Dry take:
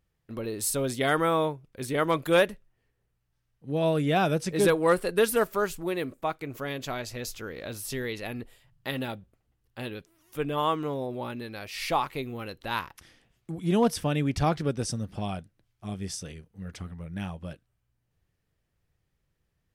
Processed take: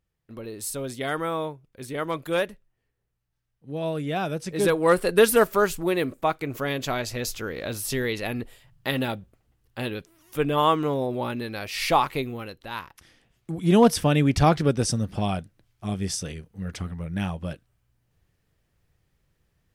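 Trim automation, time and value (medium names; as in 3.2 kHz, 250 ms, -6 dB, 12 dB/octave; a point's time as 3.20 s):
4.35 s -3.5 dB
5.13 s +6 dB
12.17 s +6 dB
12.71 s -4 dB
13.75 s +6.5 dB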